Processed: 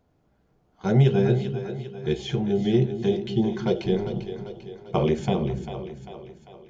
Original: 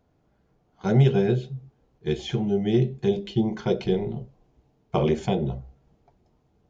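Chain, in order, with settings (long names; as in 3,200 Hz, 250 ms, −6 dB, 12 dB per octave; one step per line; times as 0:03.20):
echo with a time of its own for lows and highs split 320 Hz, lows 249 ms, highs 396 ms, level −9.5 dB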